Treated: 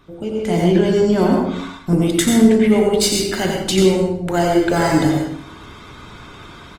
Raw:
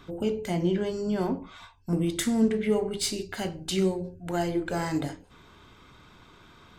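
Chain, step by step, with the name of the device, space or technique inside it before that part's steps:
speakerphone in a meeting room (convolution reverb RT60 0.70 s, pre-delay 83 ms, DRR 1 dB; far-end echo of a speakerphone 80 ms, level −27 dB; automatic gain control gain up to 13 dB; Opus 24 kbit/s 48,000 Hz)

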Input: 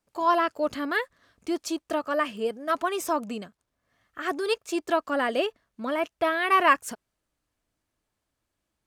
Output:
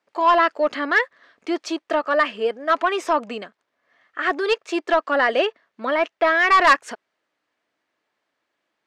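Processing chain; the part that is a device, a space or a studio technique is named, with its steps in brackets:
intercom (band-pass filter 370–4,000 Hz; parametric band 1,900 Hz +4.5 dB 0.46 octaves; soft clipping −15.5 dBFS, distortion −14 dB)
level +8 dB

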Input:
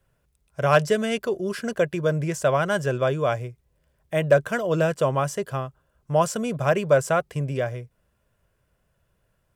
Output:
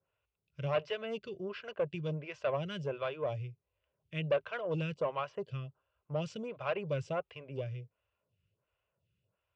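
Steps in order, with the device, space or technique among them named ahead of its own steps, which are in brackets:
vibe pedal into a guitar amplifier (phaser with staggered stages 1.4 Hz; tube saturation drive 14 dB, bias 0.3; loudspeaker in its box 84–4,400 Hz, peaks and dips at 100 Hz +8 dB, 240 Hz −7 dB, 350 Hz −3 dB, 720 Hz −3 dB, 1,700 Hz −7 dB, 2,700 Hz +9 dB)
level −7.5 dB

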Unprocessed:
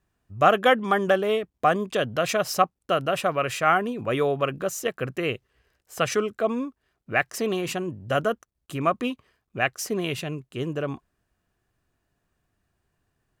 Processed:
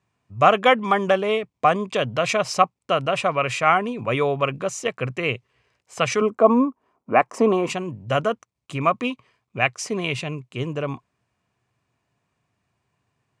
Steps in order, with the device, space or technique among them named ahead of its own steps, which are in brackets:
0:06.21–0:07.70: octave-band graphic EQ 125/250/500/1,000/2,000/4,000/8,000 Hz −9/+10/+4/+10/−6/−9/−4 dB
car door speaker (loudspeaker in its box 110–8,600 Hz, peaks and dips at 120 Hz +7 dB, 340 Hz −4 dB, 1,000 Hz +6 dB, 1,600 Hz −5 dB, 2,300 Hz +7 dB)
level +2 dB

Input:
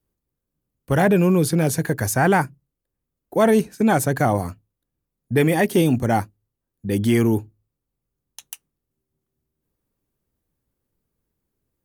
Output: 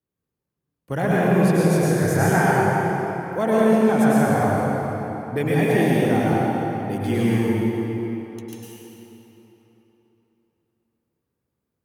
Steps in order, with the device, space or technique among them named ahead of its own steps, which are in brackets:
high-pass filter 100 Hz
0:01.67–0:02.35: double-tracking delay 29 ms −2.5 dB
swimming-pool hall (convolution reverb RT60 3.6 s, pre-delay 97 ms, DRR −7.5 dB; high-shelf EQ 5,000 Hz −6 dB)
level −7 dB

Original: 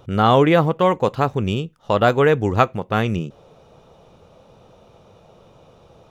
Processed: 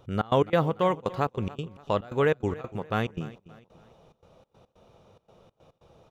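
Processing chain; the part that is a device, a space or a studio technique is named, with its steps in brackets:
trance gate with a delay (gate pattern "xx.x.xxxx." 142 BPM −24 dB; repeating echo 287 ms, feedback 38%, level −18.5 dB)
level −7.5 dB

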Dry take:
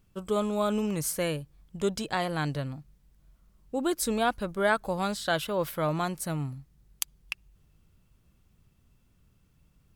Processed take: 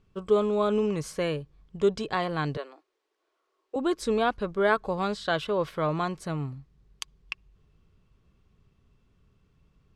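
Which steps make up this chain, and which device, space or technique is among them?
inside a cardboard box (low-pass filter 4,800 Hz 12 dB per octave; hollow resonant body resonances 420/1,100 Hz, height 8 dB)
0:02.57–0:03.76: elliptic high-pass filter 340 Hz, stop band 50 dB

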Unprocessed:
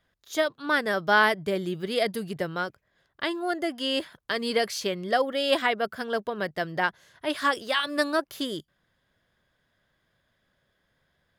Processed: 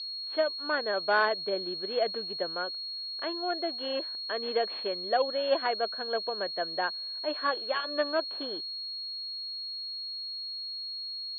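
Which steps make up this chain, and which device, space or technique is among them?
toy sound module (linearly interpolated sample-rate reduction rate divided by 4×; switching amplifier with a slow clock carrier 4,300 Hz; loudspeaker in its box 500–3,900 Hz, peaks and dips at 880 Hz −5 dB, 1,300 Hz −6 dB, 2,000 Hz −9 dB, 3,300 Hz +3 dB)
level +1 dB

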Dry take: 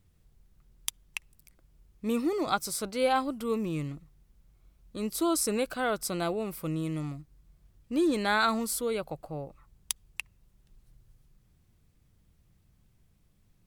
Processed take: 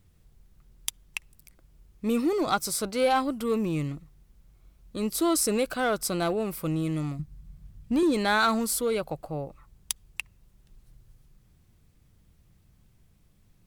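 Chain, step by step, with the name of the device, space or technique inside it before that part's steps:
0:07.19–0:08.03: low shelf with overshoot 250 Hz +8 dB, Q 1.5
parallel distortion (in parallel at −4 dB: hard clipping −27.5 dBFS, distortion −9 dB)

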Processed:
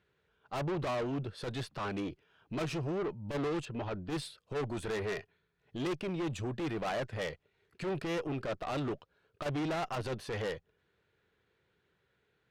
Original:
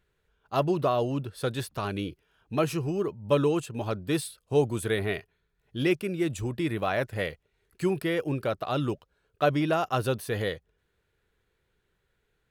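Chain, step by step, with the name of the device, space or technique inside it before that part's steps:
valve radio (band-pass filter 100–4,800 Hz; tube saturation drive 33 dB, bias 0.35; saturating transformer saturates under 84 Hz)
0:03.65–0:04.10: high-frequency loss of the air 130 metres
level +2 dB

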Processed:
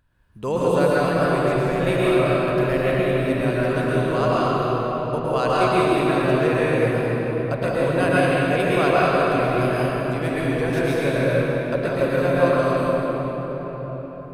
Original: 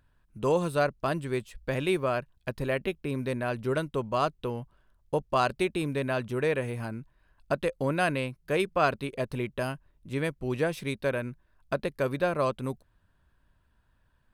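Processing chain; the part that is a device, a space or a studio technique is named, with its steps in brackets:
cathedral (convolution reverb RT60 4.9 s, pre-delay 104 ms, DRR −8.5 dB)

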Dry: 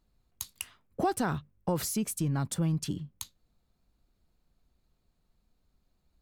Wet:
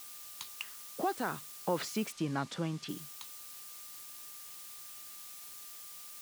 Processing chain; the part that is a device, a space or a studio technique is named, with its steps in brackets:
shortwave radio (band-pass filter 270–2,600 Hz; amplitude tremolo 0.45 Hz, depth 51%; steady tone 1,200 Hz −66 dBFS; white noise bed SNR 17 dB)
0:02.12–0:02.89: low-pass filter 6,100 Hz 12 dB per octave
high-shelf EQ 2,600 Hz +11 dB
level +1.5 dB

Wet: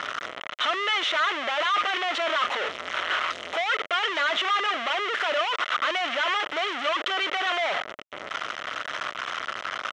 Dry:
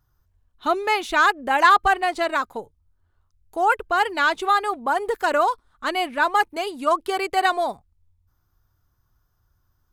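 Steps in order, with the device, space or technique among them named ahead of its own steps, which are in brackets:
0:01.43–0:03.66: high-pass filter 110 Hz 12 dB per octave
home computer beeper (sign of each sample alone; loudspeaker in its box 610–5,100 Hz, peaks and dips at 610 Hz +7 dB, 860 Hz −5 dB, 1,300 Hz +8 dB, 2,000 Hz +8 dB, 3,100 Hz +9 dB, 4,700 Hz −9 dB)
level −3.5 dB

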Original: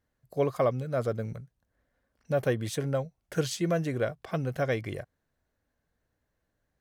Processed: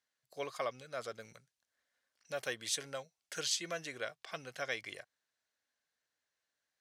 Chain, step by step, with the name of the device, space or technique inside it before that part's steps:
piezo pickup straight into a mixer (low-pass filter 5,100 Hz 12 dB per octave; first difference)
0:01.20–0:03.38: high-shelf EQ 5,700 Hz +4.5 dB
level +9 dB

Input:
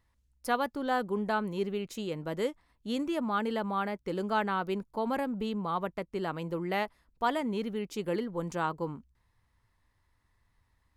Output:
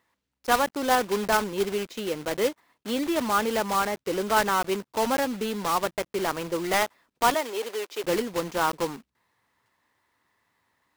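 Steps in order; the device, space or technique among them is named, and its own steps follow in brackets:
early digital voice recorder (band-pass filter 270–4,000 Hz; one scale factor per block 3 bits)
0:07.34–0:08.04: high-pass filter 370 Hz 24 dB per octave
level +7 dB

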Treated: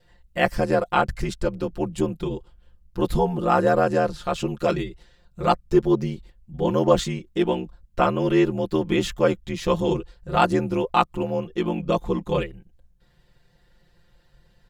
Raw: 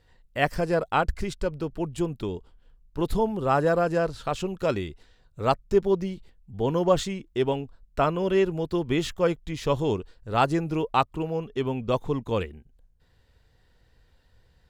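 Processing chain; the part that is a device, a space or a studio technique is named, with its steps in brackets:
ring-modulated robot voice (ring modulation 40 Hz; comb filter 5.7 ms, depth 89%)
level +3.5 dB

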